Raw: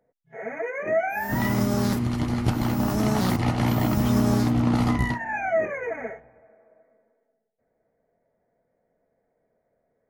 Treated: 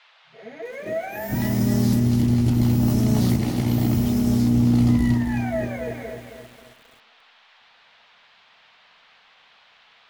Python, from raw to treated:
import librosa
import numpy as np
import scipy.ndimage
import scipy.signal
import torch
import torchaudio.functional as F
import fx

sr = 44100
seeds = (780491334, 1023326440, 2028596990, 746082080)

p1 = fx.fade_in_head(x, sr, length_s=0.77)
p2 = fx.peak_eq(p1, sr, hz=1200.0, db=-13.0, octaves=1.9)
p3 = fx.over_compress(p2, sr, threshold_db=-25.0, ratio=-1.0)
p4 = p2 + (p3 * librosa.db_to_amplitude(-1.5))
p5 = fx.dmg_noise_band(p4, sr, seeds[0], low_hz=650.0, high_hz=3800.0, level_db=-52.0)
p6 = p5 + fx.echo_bbd(p5, sr, ms=75, stages=1024, feedback_pct=72, wet_db=-20.5, dry=0)
p7 = fx.echo_crushed(p6, sr, ms=267, feedback_pct=55, bits=7, wet_db=-7.0)
y = p7 * librosa.db_to_amplitude(-3.5)